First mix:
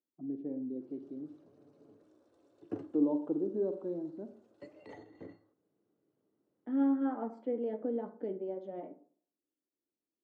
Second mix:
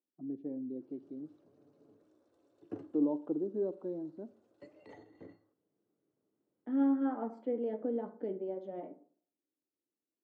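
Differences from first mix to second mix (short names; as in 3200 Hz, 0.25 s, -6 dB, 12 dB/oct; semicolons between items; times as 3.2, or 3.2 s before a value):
first voice: send -9.5 dB; background -3.5 dB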